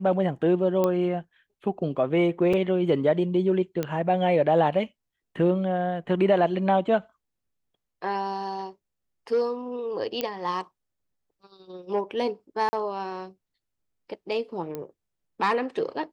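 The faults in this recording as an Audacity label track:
0.840000	0.840000	pop -12 dBFS
2.530000	2.530000	dropout 4.7 ms
3.830000	3.830000	pop -14 dBFS
10.210000	10.210000	pop -12 dBFS
12.690000	12.730000	dropout 40 ms
14.750000	14.750000	pop -20 dBFS

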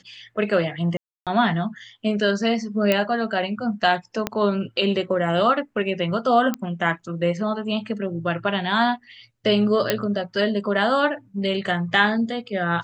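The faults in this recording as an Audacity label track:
0.970000	1.270000	dropout 297 ms
2.920000	2.920000	pop -6 dBFS
4.270000	4.270000	pop -8 dBFS
6.540000	6.540000	pop -11 dBFS
9.900000	9.900000	pop -4 dBFS

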